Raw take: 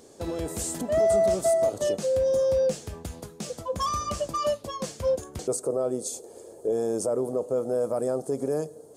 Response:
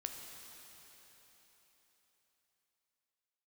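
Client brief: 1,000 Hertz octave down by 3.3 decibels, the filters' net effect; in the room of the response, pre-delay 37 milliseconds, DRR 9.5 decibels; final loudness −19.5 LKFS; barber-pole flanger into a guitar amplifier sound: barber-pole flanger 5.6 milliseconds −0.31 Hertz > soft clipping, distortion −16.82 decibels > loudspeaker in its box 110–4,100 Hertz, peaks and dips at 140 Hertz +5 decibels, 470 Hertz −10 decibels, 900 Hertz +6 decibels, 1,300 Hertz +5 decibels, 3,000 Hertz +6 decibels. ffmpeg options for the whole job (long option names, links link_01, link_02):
-filter_complex "[0:a]equalizer=frequency=1000:width_type=o:gain=-8.5,asplit=2[link_01][link_02];[1:a]atrim=start_sample=2205,adelay=37[link_03];[link_02][link_03]afir=irnorm=-1:irlink=0,volume=-8dB[link_04];[link_01][link_04]amix=inputs=2:normalize=0,asplit=2[link_05][link_06];[link_06]adelay=5.6,afreqshift=-0.31[link_07];[link_05][link_07]amix=inputs=2:normalize=1,asoftclip=threshold=-24.5dB,highpass=110,equalizer=frequency=140:width_type=q:width=4:gain=5,equalizer=frequency=470:width_type=q:width=4:gain=-10,equalizer=frequency=900:width_type=q:width=4:gain=6,equalizer=frequency=1300:width_type=q:width=4:gain=5,equalizer=frequency=3000:width_type=q:width=4:gain=6,lowpass=frequency=4100:width=0.5412,lowpass=frequency=4100:width=1.3066,volume=17.5dB"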